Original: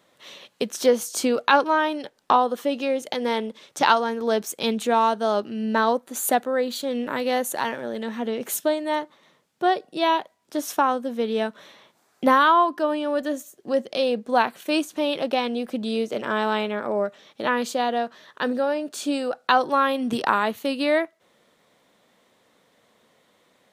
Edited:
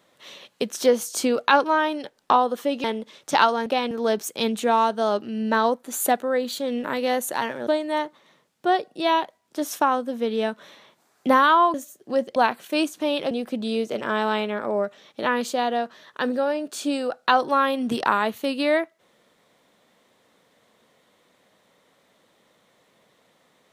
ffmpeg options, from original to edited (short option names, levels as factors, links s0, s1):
-filter_complex "[0:a]asplit=8[s0][s1][s2][s3][s4][s5][s6][s7];[s0]atrim=end=2.842[s8];[s1]atrim=start=3.318:end=4.142[s9];[s2]atrim=start=15.268:end=15.522[s10];[s3]atrim=start=4.138:end=7.902[s11];[s4]atrim=start=8.638:end=12.712[s12];[s5]atrim=start=13.318:end=13.942[s13];[s6]atrim=start=14.318:end=15.272[s14];[s7]atrim=start=15.518[s15];[s8][s9]acrossfade=d=0.004:c1=hsin:c2=hsin[s16];[s16][s10]acrossfade=d=0.004:c1=hsin:c2=hsin[s17];[s17][s11]acrossfade=d=0.004:c1=hsin:c2=hsin[s18];[s18][s12]acrossfade=d=0.004:c1=hsin:c2=hsin[s19];[s19][s13]acrossfade=d=0.004:c1=hsin:c2=hsin[s20];[s20][s14]acrossfade=d=0.004:c1=hsin:c2=hsin[s21];[s21][s15]acrossfade=d=0.004:c1=hsin:c2=hsin"